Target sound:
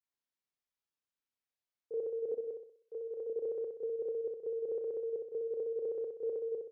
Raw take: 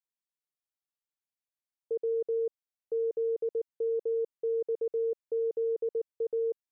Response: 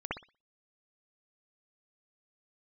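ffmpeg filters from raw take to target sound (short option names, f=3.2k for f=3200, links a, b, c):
-filter_complex "[0:a]asettb=1/sr,asplit=3[a][b][c];[a]atrim=end=2.314[d];[b]atrim=start=2.31:end=3.27,asetpts=PTS-STARTPTS,afade=t=in:d=0.004:c=qsin,afade=t=out:st=0.956:d=0.004:c=qsin,lowshelf=f=330:g=-11.5[e];[c]atrim=start=3.266[f];[d][e]acrossfade=d=0.004:c1=hsin:c2=qsin[g];[g][f]acrossfade=d=0.004:c1=qsin:c2=hsin,aecho=1:1:63|126|189|252|315|378:0.562|0.253|0.114|0.0512|0.0231|0.0104[h];[1:a]atrim=start_sample=2205,asetrate=88200,aresample=44100[i];[h][i]afir=irnorm=-1:irlink=0"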